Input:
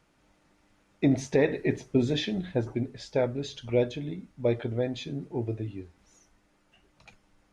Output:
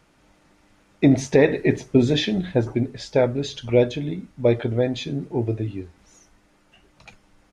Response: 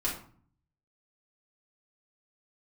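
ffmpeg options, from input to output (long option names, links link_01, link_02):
-af "aresample=32000,aresample=44100,volume=7.5dB"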